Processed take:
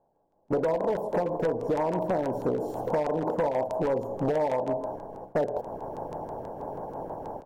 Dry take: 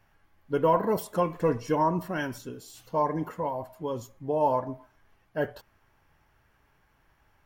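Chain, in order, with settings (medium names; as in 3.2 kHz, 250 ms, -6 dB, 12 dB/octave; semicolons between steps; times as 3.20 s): spectral levelling over time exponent 0.6; level rider gain up to 9 dB; peaking EQ 780 Hz +12.5 dB 0.61 oct; de-hum 105.3 Hz, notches 33; gate -34 dBFS, range -26 dB; FFT filter 110 Hz 0 dB, 540 Hz +7 dB, 2.4 kHz -23 dB, 9.2 kHz -16 dB; compression 16:1, threshold -19 dBFS, peak gain reduction 17.5 dB; band-stop 8 kHz, Q 10; hard clipper -18.5 dBFS, distortion -14 dB; LFO notch saw down 6.2 Hz 590–6900 Hz; trim -2 dB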